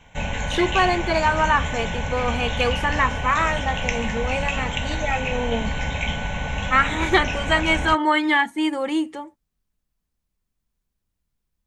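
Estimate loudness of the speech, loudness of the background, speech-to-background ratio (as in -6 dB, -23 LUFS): -22.5 LUFS, -26.5 LUFS, 4.0 dB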